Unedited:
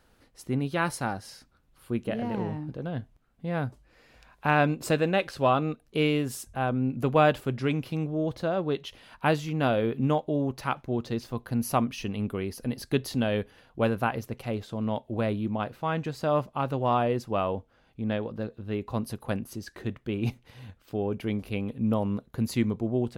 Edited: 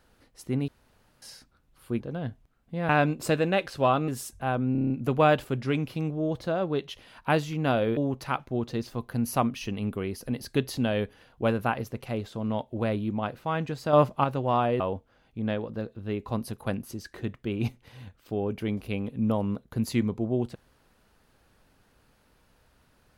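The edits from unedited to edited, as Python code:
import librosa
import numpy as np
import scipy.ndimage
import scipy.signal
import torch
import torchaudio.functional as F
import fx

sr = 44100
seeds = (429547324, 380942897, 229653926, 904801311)

y = fx.edit(x, sr, fx.room_tone_fill(start_s=0.68, length_s=0.54),
    fx.cut(start_s=2.0, length_s=0.71),
    fx.cut(start_s=3.6, length_s=0.9),
    fx.cut(start_s=5.69, length_s=0.53),
    fx.stutter(start_s=6.86, slice_s=0.03, count=7),
    fx.cut(start_s=9.93, length_s=0.41),
    fx.clip_gain(start_s=16.3, length_s=0.31, db=6.0),
    fx.cut(start_s=17.17, length_s=0.25), tone=tone)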